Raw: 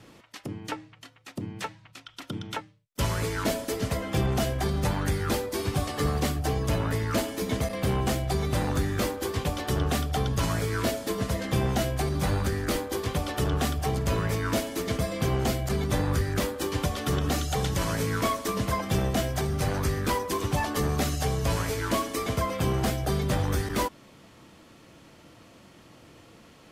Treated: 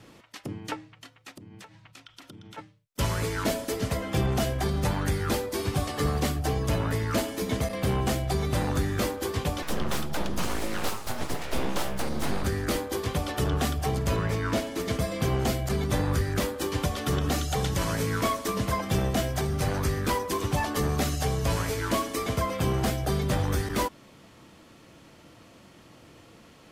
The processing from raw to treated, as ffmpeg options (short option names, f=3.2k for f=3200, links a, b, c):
-filter_complex "[0:a]asplit=3[a][b][c];[a]afade=t=out:st=1.36:d=0.02[d];[b]acompressor=threshold=-42dB:ratio=20:attack=3.2:release=140:knee=1:detection=peak,afade=t=in:st=1.36:d=0.02,afade=t=out:st=2.57:d=0.02[e];[c]afade=t=in:st=2.57:d=0.02[f];[d][e][f]amix=inputs=3:normalize=0,asettb=1/sr,asplit=3[g][h][i];[g]atrim=end=9.624[j];[h]atrim=start=9.62:end=12.44,asetpts=PTS-STARTPTS,afade=t=in:d=0.004:c=qsin,afade=t=out:st=2.816:d=0.004:c=qsin,aeval=exprs='abs(val(0))':c=same[k];[i]atrim=start=12.436[l];[j][k]acrossfade=d=0.004:c1=hsin:c2=qsin[m];[m][l]acrossfade=d=0.004:c1=qsin:c2=hsin,asettb=1/sr,asplit=3[n][o][p];[n]atrim=end=14.164[q];[o]atrim=start=14.16:end=14.8,asetpts=PTS-STARTPTS,afade=t=in:d=0.004:c=qsin,afade=t=out:st=0.636:d=0.004:c=qsin,equalizer=f=14k:w=0.38:g=-7.5[r];[p]atrim=start=14.796[s];[q][r]acrossfade=d=0.004:c1=hsin:c2=qsin[t];[t][s]acrossfade=d=0.004:c1=qsin:c2=hsin"